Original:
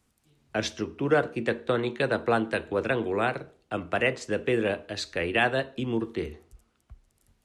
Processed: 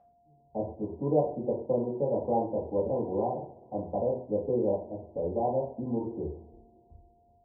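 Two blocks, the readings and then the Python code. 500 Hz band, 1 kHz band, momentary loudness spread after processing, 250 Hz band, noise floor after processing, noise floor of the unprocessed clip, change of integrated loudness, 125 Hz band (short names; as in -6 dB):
-1.0 dB, -3.0 dB, 10 LU, -2.5 dB, -64 dBFS, -71 dBFS, -3.5 dB, -2.5 dB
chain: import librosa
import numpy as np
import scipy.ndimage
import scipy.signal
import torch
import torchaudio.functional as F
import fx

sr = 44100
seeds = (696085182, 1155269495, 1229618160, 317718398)

y = scipy.signal.sosfilt(scipy.signal.cheby1(8, 1.0, 970.0, 'lowpass', fs=sr, output='sos'), x)
y = y + 10.0 ** (-52.0 / 20.0) * np.sin(2.0 * np.pi * 700.0 * np.arange(len(y)) / sr)
y = fx.rev_double_slope(y, sr, seeds[0], early_s=0.43, late_s=2.4, knee_db=-26, drr_db=-6.5)
y = F.gain(torch.from_numpy(y), -8.0).numpy()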